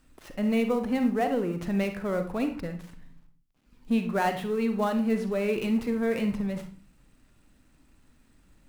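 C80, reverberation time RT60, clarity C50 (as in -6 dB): 14.5 dB, 0.40 s, 8.5 dB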